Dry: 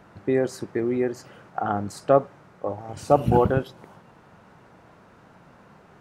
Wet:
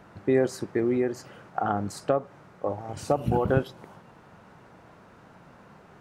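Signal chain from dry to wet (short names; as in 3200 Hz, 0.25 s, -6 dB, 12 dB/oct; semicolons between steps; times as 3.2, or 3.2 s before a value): 0.97–3.48 compressor 6:1, threshold -20 dBFS, peak gain reduction 9.5 dB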